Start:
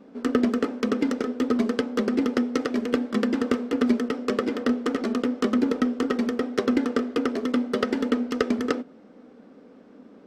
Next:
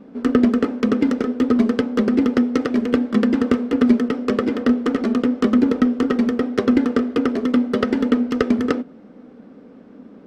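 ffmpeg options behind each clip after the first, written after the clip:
-af "bass=f=250:g=7,treble=f=4k:g=-5,volume=3.5dB"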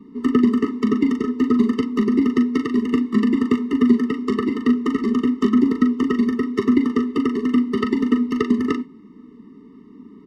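-filter_complex "[0:a]acrossover=split=100|940[a][b][c];[a]alimiter=level_in=16dB:limit=-24dB:level=0:latency=1:release=482,volume=-16dB[d];[c]asplit=2[e][f];[f]adelay=40,volume=-6dB[g];[e][g]amix=inputs=2:normalize=0[h];[d][b][h]amix=inputs=3:normalize=0,afftfilt=real='re*eq(mod(floor(b*sr/1024/440),2),0)':imag='im*eq(mod(floor(b*sr/1024/440),2),0)':win_size=1024:overlap=0.75"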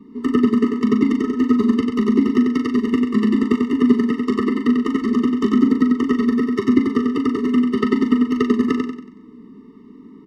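-af "aecho=1:1:93|186|279|372|465:0.596|0.238|0.0953|0.0381|0.0152"

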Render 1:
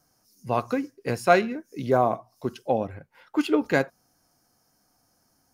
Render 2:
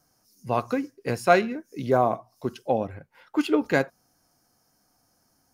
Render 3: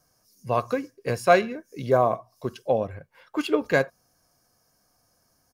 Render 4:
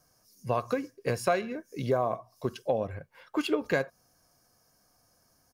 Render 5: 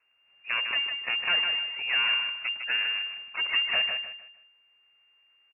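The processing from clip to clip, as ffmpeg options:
-af anull
-af "aecho=1:1:1.8:0.37"
-af "acompressor=threshold=-24dB:ratio=4"
-filter_complex "[0:a]aeval=exprs='abs(val(0))':c=same,asplit=2[a][b];[b]aecho=0:1:154|308|462|616:0.501|0.15|0.0451|0.0135[c];[a][c]amix=inputs=2:normalize=0,lowpass=f=2.4k:t=q:w=0.5098,lowpass=f=2.4k:t=q:w=0.6013,lowpass=f=2.4k:t=q:w=0.9,lowpass=f=2.4k:t=q:w=2.563,afreqshift=-2800"

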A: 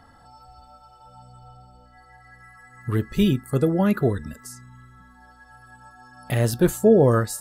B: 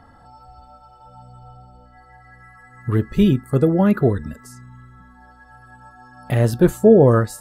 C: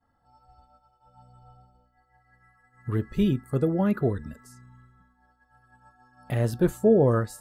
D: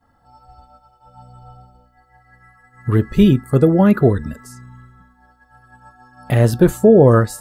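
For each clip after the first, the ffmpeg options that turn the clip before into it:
-af "highshelf=f=2.5k:g=-9.5,volume=4.5dB"
-af "agate=range=-33dB:threshold=-39dB:ratio=3:detection=peak,volume=-8dB"
-af "alimiter=level_in=12.5dB:limit=-1dB:release=50:level=0:latency=1,volume=-1dB"

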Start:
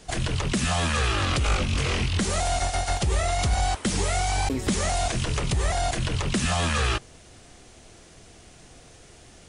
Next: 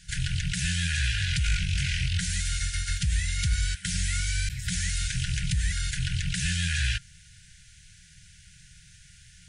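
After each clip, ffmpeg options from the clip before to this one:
-af "afftfilt=real='re*(1-between(b*sr/4096,190,1400))':imag='im*(1-between(b*sr/4096,190,1400))':win_size=4096:overlap=0.75,volume=-1.5dB"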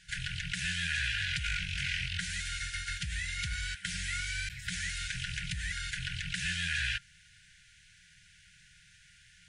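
-af "bass=f=250:g=-13,treble=f=4k:g=-10"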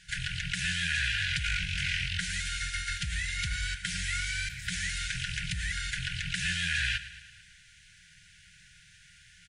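-af "acontrast=58,aecho=1:1:111|222|333|444|555|666:0.178|0.103|0.0598|0.0347|0.0201|0.0117,volume=-3.5dB"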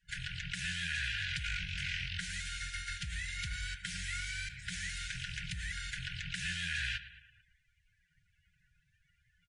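-af "afftdn=nr=22:nf=-50,volume=-6.5dB"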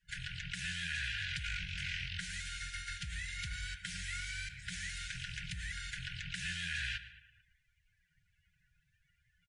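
-filter_complex "[0:a]asplit=2[a][b];[b]adelay=145.8,volume=-21dB,highshelf=f=4k:g=-3.28[c];[a][c]amix=inputs=2:normalize=0,volume=-2dB"

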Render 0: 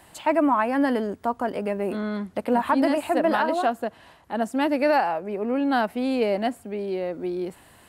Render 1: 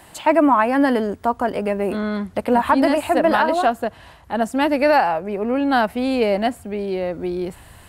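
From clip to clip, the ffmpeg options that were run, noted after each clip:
-af "asubboost=boost=4:cutoff=120,volume=6dB"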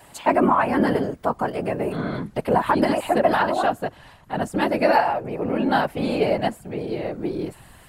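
-af "afftfilt=real='hypot(re,im)*cos(2*PI*random(0))':imag='hypot(re,im)*sin(2*PI*random(1))':win_size=512:overlap=0.75,volume=3dB"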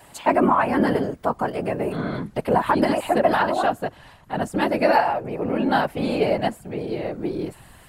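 -af anull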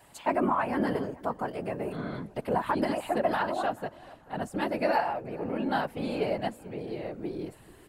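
-filter_complex "[0:a]asplit=2[a][b];[b]adelay=437,lowpass=f=2.4k:p=1,volume=-21dB,asplit=2[c][d];[d]adelay=437,lowpass=f=2.4k:p=1,volume=0.35,asplit=2[e][f];[f]adelay=437,lowpass=f=2.4k:p=1,volume=0.35[g];[a][c][e][g]amix=inputs=4:normalize=0,volume=-8.5dB"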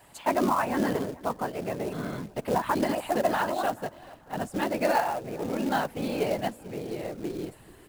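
-af "acrusher=bits=4:mode=log:mix=0:aa=0.000001,volume=1.5dB"

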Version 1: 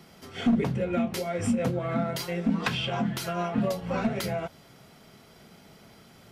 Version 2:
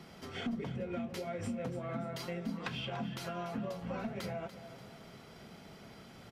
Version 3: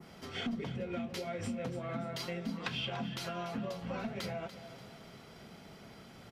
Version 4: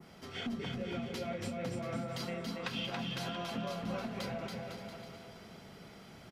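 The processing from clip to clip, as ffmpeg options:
-filter_complex "[0:a]highshelf=f=7.7k:g=-9.5,acompressor=threshold=-40dB:ratio=3,asplit=2[a][b];[b]aecho=0:1:290|580|870|1160:0.237|0.107|0.048|0.0216[c];[a][c]amix=inputs=2:normalize=0"
-af "adynamicequalizer=threshold=0.00141:dfrequency=3900:dqfactor=0.75:tfrequency=3900:tqfactor=0.75:attack=5:release=100:ratio=0.375:range=2.5:mode=boostabove:tftype=bell"
-af "aecho=1:1:280|504|683.2|826.6|941.2:0.631|0.398|0.251|0.158|0.1,volume=-2dB"

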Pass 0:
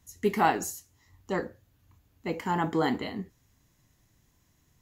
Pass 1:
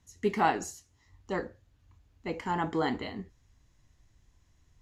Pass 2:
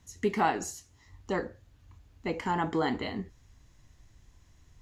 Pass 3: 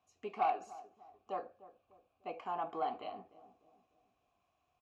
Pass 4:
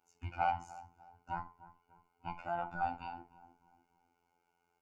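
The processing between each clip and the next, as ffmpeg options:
-af "asubboost=boost=4.5:cutoff=78,lowpass=7.1k,volume=-2dB"
-af "acompressor=threshold=-40dB:ratio=1.5,volume=6dB"
-filter_complex "[0:a]asplit=3[a][b][c];[a]bandpass=f=730:t=q:w=8,volume=0dB[d];[b]bandpass=f=1.09k:t=q:w=8,volume=-6dB[e];[c]bandpass=f=2.44k:t=q:w=8,volume=-9dB[f];[d][e][f]amix=inputs=3:normalize=0,asoftclip=type=tanh:threshold=-26dB,asplit=2[g][h];[h]adelay=299,lowpass=f=810:p=1,volume=-15.5dB,asplit=2[i][j];[j]adelay=299,lowpass=f=810:p=1,volume=0.49,asplit=2[k][l];[l]adelay=299,lowpass=f=810:p=1,volume=0.49,asplit=2[m][n];[n]adelay=299,lowpass=f=810:p=1,volume=0.49[o];[g][i][k][m][o]amix=inputs=5:normalize=0,volume=3dB"
-af "afftfilt=real='real(if(between(b,1,1008),(2*floor((b-1)/24)+1)*24-b,b),0)':imag='imag(if(between(b,1,1008),(2*floor((b-1)/24)+1)*24-b,b),0)*if(between(b,1,1008),-1,1)':win_size=2048:overlap=0.75,afftfilt=real='hypot(re,im)*cos(PI*b)':imag='0':win_size=2048:overlap=0.75,superequalizer=11b=0.447:13b=0.282,volume=4.5dB"

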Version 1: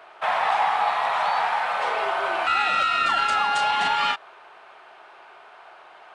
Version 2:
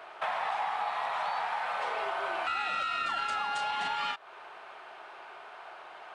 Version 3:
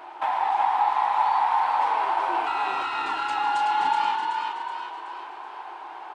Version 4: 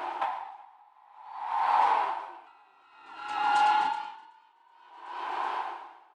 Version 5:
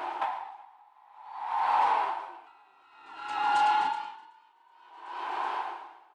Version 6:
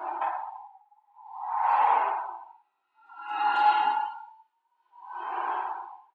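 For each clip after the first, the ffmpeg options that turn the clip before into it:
-af "acompressor=threshold=-33dB:ratio=3"
-filter_complex "[0:a]superequalizer=6b=3.98:9b=3.55,asplit=7[a][b][c][d][e][f][g];[b]adelay=375,afreqshift=42,volume=-4dB[h];[c]adelay=750,afreqshift=84,volume=-10.2dB[i];[d]adelay=1125,afreqshift=126,volume=-16.4dB[j];[e]adelay=1500,afreqshift=168,volume=-22.6dB[k];[f]adelay=1875,afreqshift=210,volume=-28.8dB[l];[g]adelay=2250,afreqshift=252,volume=-35dB[m];[a][h][i][j][k][l][m]amix=inputs=7:normalize=0"
-af "acompressor=threshold=-31dB:ratio=2.5,aeval=exprs='val(0)*pow(10,-36*(0.5-0.5*cos(2*PI*0.55*n/s))/20)':c=same,volume=7.5dB"
-af "asoftclip=type=tanh:threshold=-14.5dB"
-af "aecho=1:1:50|107.5|173.6|249.7|337.1:0.631|0.398|0.251|0.158|0.1,afftdn=nr=20:nf=-39"

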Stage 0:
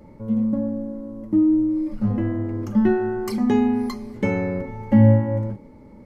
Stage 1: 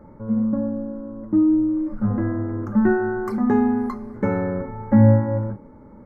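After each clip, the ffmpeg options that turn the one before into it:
-af "highshelf=f=2.1k:t=q:w=3:g=-12.5"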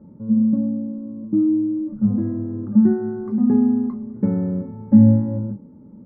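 -af "bandpass=f=190:t=q:w=1.8:csg=0,volume=5.5dB"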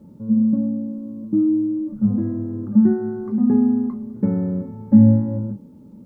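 -af "acrusher=bits=11:mix=0:aa=0.000001"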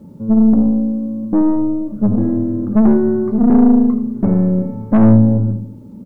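-filter_complex "[0:a]aeval=exprs='(tanh(6.31*val(0)+0.4)-tanh(0.4))/6.31':c=same,asplit=2[a][b];[b]adelay=81,lowpass=f=820:p=1,volume=-7.5dB,asplit=2[c][d];[d]adelay=81,lowpass=f=820:p=1,volume=0.47,asplit=2[e][f];[f]adelay=81,lowpass=f=820:p=1,volume=0.47,asplit=2[g][h];[h]adelay=81,lowpass=f=820:p=1,volume=0.47,asplit=2[i][j];[j]adelay=81,lowpass=f=820:p=1,volume=0.47[k];[a][c][e][g][i][k]amix=inputs=6:normalize=0,volume=8dB"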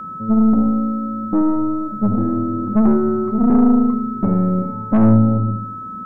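-af "aeval=exprs='val(0)+0.0562*sin(2*PI*1300*n/s)':c=same,volume=-3dB"

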